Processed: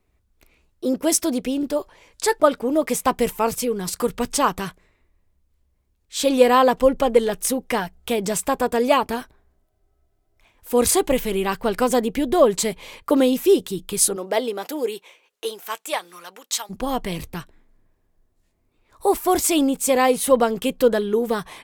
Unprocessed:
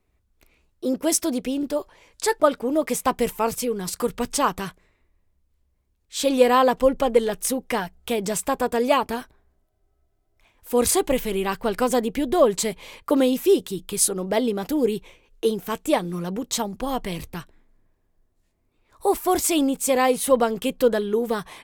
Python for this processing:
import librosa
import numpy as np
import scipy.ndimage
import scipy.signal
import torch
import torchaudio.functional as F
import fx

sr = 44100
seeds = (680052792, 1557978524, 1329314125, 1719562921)

y = fx.highpass(x, sr, hz=fx.line((14.15, 350.0), (16.69, 1400.0)), slope=12, at=(14.15, 16.69), fade=0.02)
y = y * librosa.db_to_amplitude(2.0)